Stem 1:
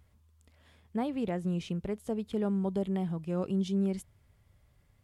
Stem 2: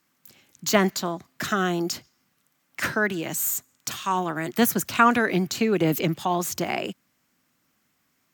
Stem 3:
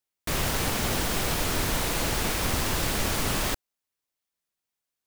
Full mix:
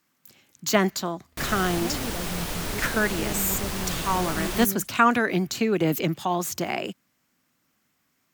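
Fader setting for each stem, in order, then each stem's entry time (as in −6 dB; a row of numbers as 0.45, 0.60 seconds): −3.5, −1.0, −4.0 decibels; 0.85, 0.00, 1.10 seconds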